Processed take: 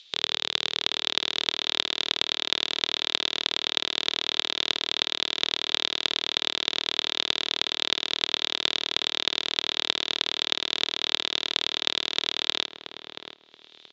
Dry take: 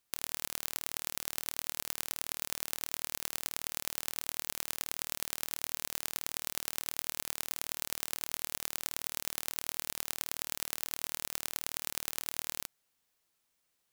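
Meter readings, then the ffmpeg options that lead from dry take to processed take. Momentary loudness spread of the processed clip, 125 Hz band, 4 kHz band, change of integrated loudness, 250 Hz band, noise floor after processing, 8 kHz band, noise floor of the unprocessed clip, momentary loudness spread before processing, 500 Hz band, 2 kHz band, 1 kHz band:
1 LU, no reading, +19.0 dB, +10.5 dB, +12.0 dB, -58 dBFS, -3.5 dB, -79 dBFS, 1 LU, +13.5 dB, +12.0 dB, +9.5 dB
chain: -filter_complex "[0:a]aresample=16000,acrusher=bits=2:mode=log:mix=0:aa=0.000001,aresample=44100,equalizer=f=420:w=2.3:g=8,asplit=2[s0][s1];[s1]adelay=678,lowpass=f=1500:p=1,volume=0.447,asplit=2[s2][s3];[s3]adelay=678,lowpass=f=1500:p=1,volume=0.24,asplit=2[s4][s5];[s5]adelay=678,lowpass=f=1500:p=1,volume=0.24[s6];[s0][s2][s4][s6]amix=inputs=4:normalize=0,acrossover=split=120|2600[s7][s8][s9];[s7]acrusher=bits=4:mix=0:aa=0.000001[s10];[s9]acompressor=mode=upward:threshold=0.00251:ratio=2.5[s11];[s10][s8][s11]amix=inputs=3:normalize=0,lowpass=f=3600:t=q:w=6.7,volume=2.24"

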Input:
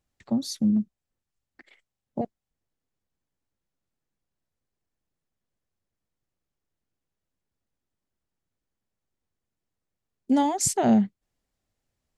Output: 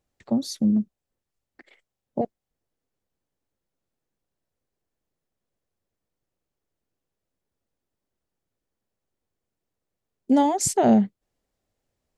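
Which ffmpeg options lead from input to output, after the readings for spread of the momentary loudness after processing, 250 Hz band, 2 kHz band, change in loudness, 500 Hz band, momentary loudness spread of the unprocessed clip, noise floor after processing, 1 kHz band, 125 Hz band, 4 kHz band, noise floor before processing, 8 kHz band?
13 LU, +2.0 dB, +0.5 dB, +2.0 dB, +5.0 dB, 14 LU, -85 dBFS, +3.0 dB, +1.5 dB, 0.0 dB, under -85 dBFS, 0.0 dB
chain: -af "equalizer=f=490:t=o:w=1.5:g=6"

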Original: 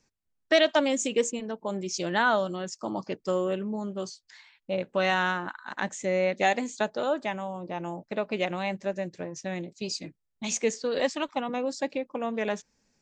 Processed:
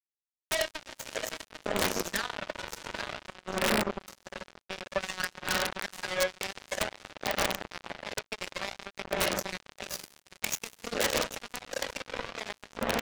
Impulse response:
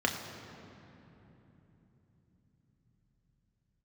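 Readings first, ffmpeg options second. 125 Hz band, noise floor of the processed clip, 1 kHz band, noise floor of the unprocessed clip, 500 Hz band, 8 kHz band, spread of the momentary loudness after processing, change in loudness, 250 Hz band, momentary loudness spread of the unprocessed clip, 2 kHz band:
-5.5 dB, -82 dBFS, -5.5 dB, -77 dBFS, -7.5 dB, 0.0 dB, 11 LU, -4.0 dB, -8.0 dB, 11 LU, -2.5 dB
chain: -filter_complex "[0:a]aecho=1:1:136|647|795:0.299|0.112|0.335,acompressor=mode=upward:threshold=0.0141:ratio=2.5[s0];[1:a]atrim=start_sample=2205,asetrate=36162,aresample=44100[s1];[s0][s1]afir=irnorm=-1:irlink=0,asoftclip=type=tanh:threshold=0.794,highpass=f=1100:p=1,acompressor=threshold=0.0355:ratio=10,aphaser=in_gain=1:out_gain=1:delay=2.2:decay=0.57:speed=0.54:type=sinusoidal,aeval=exprs='(mod(8.91*val(0)+1,2)-1)/8.91':c=same,acrusher=bits=3:mix=0:aa=0.5,volume=0.891"

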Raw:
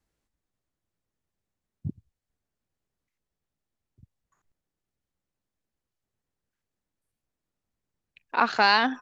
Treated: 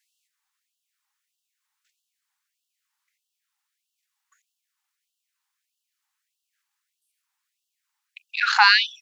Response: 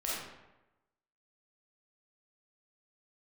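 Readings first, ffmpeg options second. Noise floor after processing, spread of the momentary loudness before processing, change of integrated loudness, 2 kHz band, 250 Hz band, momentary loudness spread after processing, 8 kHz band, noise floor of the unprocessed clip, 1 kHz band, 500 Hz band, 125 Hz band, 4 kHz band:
-83 dBFS, 19 LU, +5.5 dB, +6.5 dB, under -40 dB, 13 LU, no reading, under -85 dBFS, +1.0 dB, under -30 dB, under -40 dB, +8.0 dB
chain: -af "alimiter=level_in=3.16:limit=0.891:release=50:level=0:latency=1,afftfilt=real='re*gte(b*sr/1024,760*pow(2700/760,0.5+0.5*sin(2*PI*1.6*pts/sr)))':imag='im*gte(b*sr/1024,760*pow(2700/760,0.5+0.5*sin(2*PI*1.6*pts/sr)))':win_size=1024:overlap=0.75,volume=1.19"

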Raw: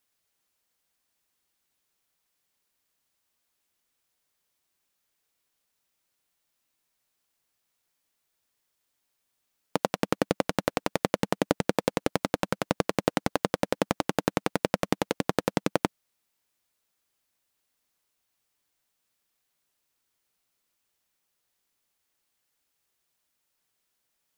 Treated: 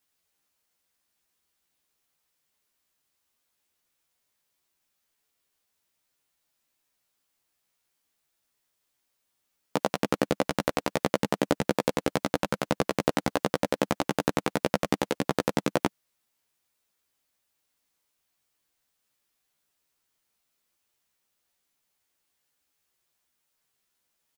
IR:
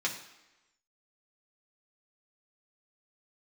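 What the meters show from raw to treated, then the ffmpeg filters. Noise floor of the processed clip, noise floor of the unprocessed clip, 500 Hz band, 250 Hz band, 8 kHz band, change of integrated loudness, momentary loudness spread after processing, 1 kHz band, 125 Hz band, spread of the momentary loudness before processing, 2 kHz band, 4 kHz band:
-78 dBFS, -79 dBFS, +0.5 dB, +0.5 dB, +0.5 dB, +0.5 dB, 3 LU, +0.5 dB, 0.0 dB, 3 LU, +0.5 dB, +0.5 dB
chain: -filter_complex "[0:a]asplit=2[s0][s1];[s1]adelay=14,volume=0.75[s2];[s0][s2]amix=inputs=2:normalize=0,volume=0.841"

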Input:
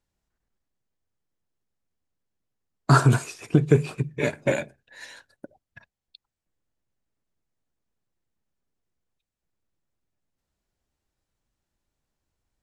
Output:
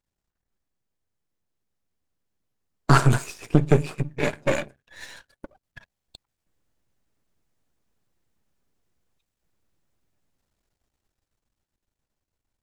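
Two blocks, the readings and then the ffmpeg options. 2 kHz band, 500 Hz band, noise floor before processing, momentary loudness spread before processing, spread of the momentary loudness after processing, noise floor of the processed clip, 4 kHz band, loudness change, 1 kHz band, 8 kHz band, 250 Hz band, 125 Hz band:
+1.0 dB, 0.0 dB, under -85 dBFS, 13 LU, 20 LU, under -85 dBFS, +2.0 dB, -0.5 dB, +1.0 dB, +0.5 dB, 0.0 dB, -0.5 dB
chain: -af "aeval=exprs='if(lt(val(0),0),0.251*val(0),val(0))':c=same,dynaudnorm=f=220:g=17:m=2.51"

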